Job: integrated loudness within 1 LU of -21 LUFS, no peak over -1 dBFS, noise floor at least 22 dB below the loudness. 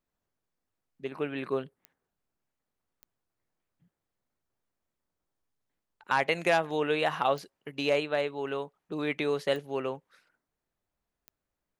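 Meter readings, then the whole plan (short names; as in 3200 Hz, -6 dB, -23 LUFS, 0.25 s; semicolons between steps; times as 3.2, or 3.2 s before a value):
clicks 5; loudness -30.0 LUFS; peak -12.0 dBFS; loudness target -21.0 LUFS
-> de-click; gain +9 dB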